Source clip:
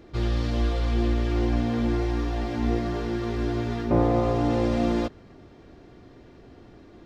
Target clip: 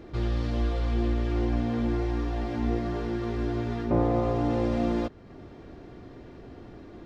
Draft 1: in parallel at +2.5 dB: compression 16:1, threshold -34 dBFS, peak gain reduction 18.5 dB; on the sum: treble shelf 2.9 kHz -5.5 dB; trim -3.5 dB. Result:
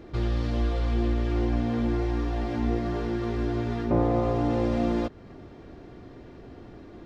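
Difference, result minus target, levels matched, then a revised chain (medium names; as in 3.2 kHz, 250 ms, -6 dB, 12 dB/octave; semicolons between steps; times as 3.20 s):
compression: peak gain reduction -6.5 dB
in parallel at +2.5 dB: compression 16:1, threshold -41 dBFS, peak gain reduction 25 dB; on the sum: treble shelf 2.9 kHz -5.5 dB; trim -3.5 dB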